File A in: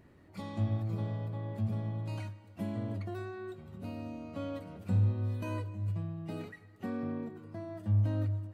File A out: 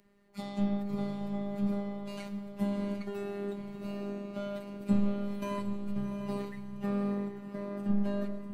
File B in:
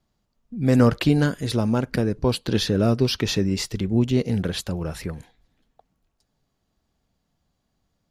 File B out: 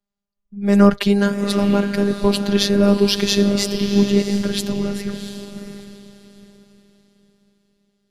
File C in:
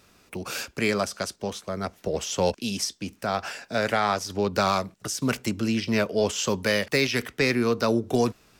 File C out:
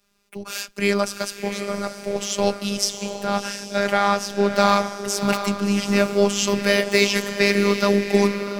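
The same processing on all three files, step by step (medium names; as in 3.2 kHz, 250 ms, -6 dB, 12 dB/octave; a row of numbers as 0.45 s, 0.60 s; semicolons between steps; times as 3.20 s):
echo that smears into a reverb 710 ms, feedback 41%, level -6.5 dB; robot voice 201 Hz; three bands expanded up and down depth 40%; trim +6 dB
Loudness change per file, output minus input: +1.0 LU, +4.5 LU, +5.0 LU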